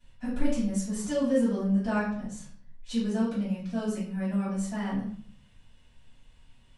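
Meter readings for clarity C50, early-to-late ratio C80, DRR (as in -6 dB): 3.0 dB, 7.5 dB, -12.5 dB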